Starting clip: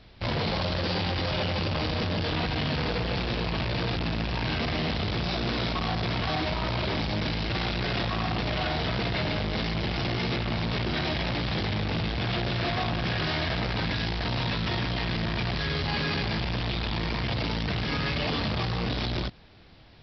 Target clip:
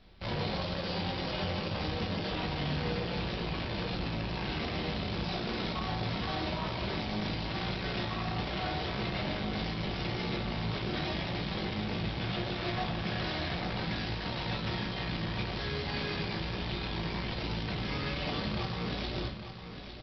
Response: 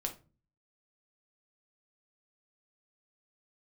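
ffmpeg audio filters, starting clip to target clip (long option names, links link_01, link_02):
-filter_complex "[0:a]aecho=1:1:854|1708|2562|3416:0.316|0.117|0.0433|0.016[link_01];[1:a]atrim=start_sample=2205[link_02];[link_01][link_02]afir=irnorm=-1:irlink=0,volume=-7dB"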